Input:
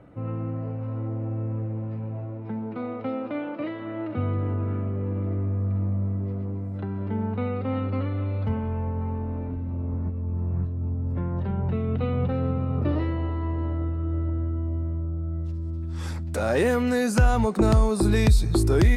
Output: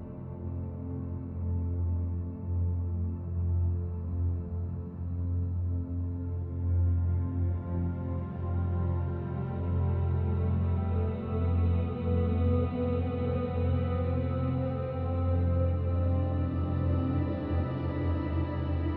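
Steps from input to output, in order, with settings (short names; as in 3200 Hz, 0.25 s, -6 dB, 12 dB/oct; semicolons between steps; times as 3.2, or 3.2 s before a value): flange 0.61 Hz, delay 7.9 ms, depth 6 ms, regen +42%; Paulstretch 5.7×, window 1.00 s, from 9.79; gain -1 dB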